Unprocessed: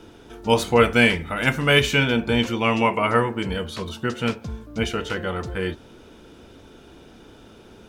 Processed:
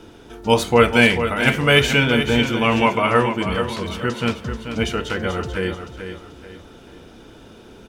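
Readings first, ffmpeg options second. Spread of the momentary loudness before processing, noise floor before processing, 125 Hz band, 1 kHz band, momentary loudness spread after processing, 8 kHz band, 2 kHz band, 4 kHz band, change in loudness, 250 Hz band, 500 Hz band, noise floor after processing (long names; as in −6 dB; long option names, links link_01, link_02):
13 LU, −48 dBFS, +3.0 dB, +3.0 dB, 14 LU, +3.0 dB, +3.0 dB, +3.0 dB, +3.0 dB, +3.0 dB, +3.0 dB, −45 dBFS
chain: -af "aecho=1:1:436|872|1308|1744:0.355|0.128|0.046|0.0166,volume=2.5dB"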